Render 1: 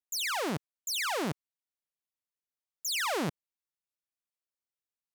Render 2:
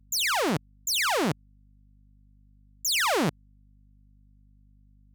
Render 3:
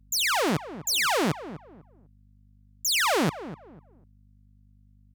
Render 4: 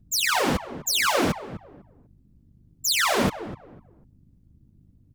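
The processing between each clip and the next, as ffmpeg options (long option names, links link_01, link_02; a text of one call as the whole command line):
ffmpeg -i in.wav -af "anlmdn=0.1,aeval=exprs='val(0)+0.000708*(sin(2*PI*50*n/s)+sin(2*PI*2*50*n/s)/2+sin(2*PI*3*50*n/s)/3+sin(2*PI*4*50*n/s)/4+sin(2*PI*5*50*n/s)/5)':channel_layout=same,volume=6.5dB" out.wav
ffmpeg -i in.wav -filter_complex "[0:a]asplit=2[link_01][link_02];[link_02]adelay=249,lowpass=frequency=1200:poles=1,volume=-13dB,asplit=2[link_03][link_04];[link_04]adelay=249,lowpass=frequency=1200:poles=1,volume=0.28,asplit=2[link_05][link_06];[link_06]adelay=249,lowpass=frequency=1200:poles=1,volume=0.28[link_07];[link_01][link_03][link_05][link_07]amix=inputs=4:normalize=0,volume=1dB" out.wav
ffmpeg -i in.wav -af "afftfilt=real='hypot(re,im)*cos(2*PI*random(0))':imag='hypot(re,im)*sin(2*PI*random(1))':win_size=512:overlap=0.75,volume=8dB" out.wav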